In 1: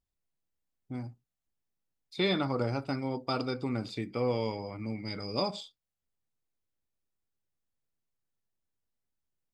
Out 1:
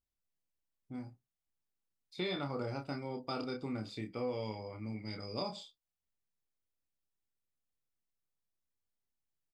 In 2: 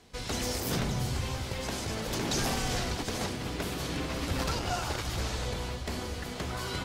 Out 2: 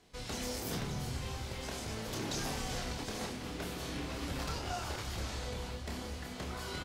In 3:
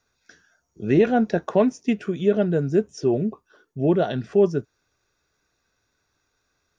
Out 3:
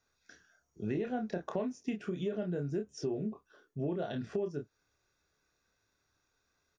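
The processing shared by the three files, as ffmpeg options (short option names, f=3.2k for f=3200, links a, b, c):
-filter_complex "[0:a]asplit=2[a][b];[b]adelay=28,volume=-5dB[c];[a][c]amix=inputs=2:normalize=0,acompressor=threshold=-25dB:ratio=6,volume=-7dB"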